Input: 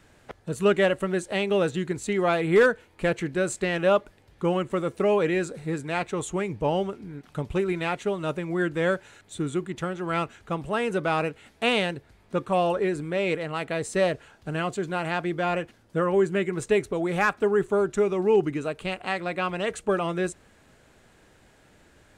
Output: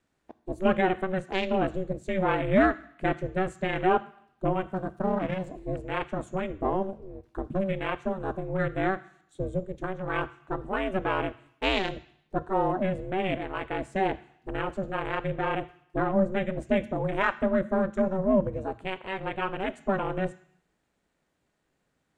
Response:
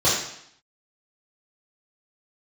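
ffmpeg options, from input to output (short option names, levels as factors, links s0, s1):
-filter_complex "[0:a]asplit=3[s0][s1][s2];[s0]afade=t=out:st=4.6:d=0.02[s3];[s1]aeval=exprs='if(lt(val(0),0),0.251*val(0),val(0))':c=same,afade=t=in:st=4.6:d=0.02,afade=t=out:st=5.46:d=0.02[s4];[s2]afade=t=in:st=5.46:d=0.02[s5];[s3][s4][s5]amix=inputs=3:normalize=0,afwtdn=0.0178,aeval=exprs='val(0)*sin(2*PI*190*n/s)':c=same,asplit=2[s6][s7];[s7]equalizer=f=500:w=0.92:g=-12.5[s8];[1:a]atrim=start_sample=2205[s9];[s8][s9]afir=irnorm=-1:irlink=0,volume=0.0376[s10];[s6][s10]amix=inputs=2:normalize=0"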